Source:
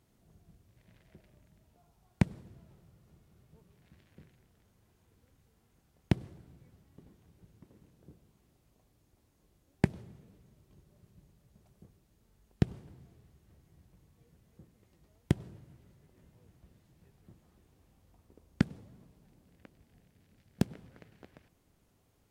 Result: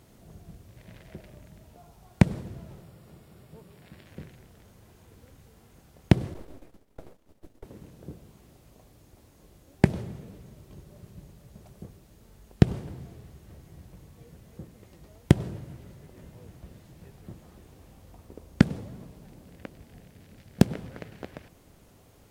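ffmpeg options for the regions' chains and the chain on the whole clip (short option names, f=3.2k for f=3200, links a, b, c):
-filter_complex "[0:a]asettb=1/sr,asplit=3[a][b][c];[a]atrim=end=2.824[d];[b]atrim=start=2.82:end=4.06,asetpts=PTS-STARTPTS,afade=t=in:d=0.004:c=qsin,afade=t=out:st=1.236:d=0.004:c=qsin,lowshelf=f=81:g=-10.5,bandreject=f=6.2k:w=7.1[e];[c]atrim=start=4.056[f];[d][e]acrossfade=d=0.004:c1=hsin:c2=qsin[g];[g][f]acrossfade=d=0.004:c1=qsin:c2=hsin,asettb=1/sr,asplit=3[h][i][j];[h]atrim=end=6.344[k];[i]atrim=start=6.34:end=7.64,asetpts=PTS-STARTPTS,afade=t=in:d=0.004:c=qsin,afade=t=out:st=1.296:d=0.004:c=qsin,agate=range=-33dB:threshold=-55dB:ratio=3:release=100:detection=peak,afreqshift=23,aeval=exprs='abs(val(0))':c=same[l];[j]atrim=start=7.636[m];[k][l]acrossfade=d=0.004:c1=hsin:c2=qsin[n];[n][m]acrossfade=d=0.004:c1=qsin:c2=hsin,equalizer=f=560:w=1.9:g=3,alimiter=level_in=14.5dB:limit=-1dB:release=50:level=0:latency=1,volume=-1dB"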